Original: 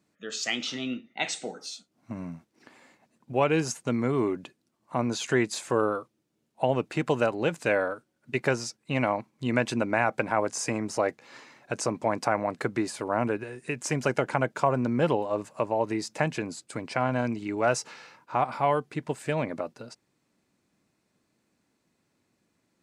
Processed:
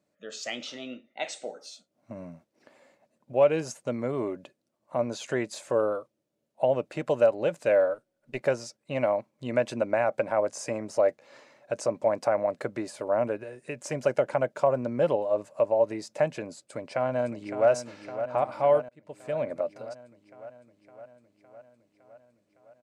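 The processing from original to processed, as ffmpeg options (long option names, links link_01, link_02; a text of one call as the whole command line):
ffmpeg -i in.wav -filter_complex "[0:a]asettb=1/sr,asplit=3[link_01][link_02][link_03];[link_01]atrim=end=0.634[link_04];[link_02]atrim=start=0.63:end=1.71,asetpts=PTS-STARTPTS,afade=type=in:duration=0.004:curve=qsin,afade=type=out:start_time=1.076:duration=0.004:curve=qsin,equalizer=frequency=150:width=1.5:gain=-8.5[link_05];[link_03]atrim=start=1.706[link_06];[link_04][link_05]acrossfade=duration=0.004:curve1=hsin:curve2=qsin[link_07];[link_07][link_06]acrossfade=duration=0.004:curve1=qsin:curve2=hsin,asettb=1/sr,asplit=3[link_08][link_09][link_10];[link_08]atrim=end=7.944[link_11];[link_09]atrim=start=7.94:end=8.41,asetpts=PTS-STARTPTS,afade=type=in:duration=0.004:curve=qsin,afade=type=out:start_time=0.466:duration=0.004:curve=qsin,aeval=exprs='if(lt(val(0),0),0.708*val(0),val(0))':channel_layout=same[link_12];[link_10]atrim=start=8.406[link_13];[link_11][link_12]acrossfade=duration=0.004:curve1=hsin:curve2=qsin[link_14];[link_14][link_13]acrossfade=duration=0.004:curve1=qsin:curve2=hsin,asplit=2[link_15][link_16];[link_16]afade=type=in:start_time=16.65:duration=0.01,afade=type=out:start_time=17.69:duration=0.01,aecho=0:1:560|1120|1680|2240|2800|3360|3920|4480|5040|5600:0.316228|0.221359|0.154952|0.108466|0.0759263|0.0531484|0.0372039|0.0260427|0.0182299|0.0127609[link_17];[link_15][link_17]amix=inputs=2:normalize=0,asplit=2[link_18][link_19];[link_18]atrim=end=18.89,asetpts=PTS-STARTPTS,afade=type=out:start_time=18.886:duration=0.004:curve=hsin[link_20];[link_19]atrim=start=18.89,asetpts=PTS-STARTPTS,afade=type=in:duration=0.67[link_21];[link_20][link_21]concat=n=2:v=0:a=1,equalizer=frequency=580:width_type=o:width=0.42:gain=14.5,volume=-6.5dB" out.wav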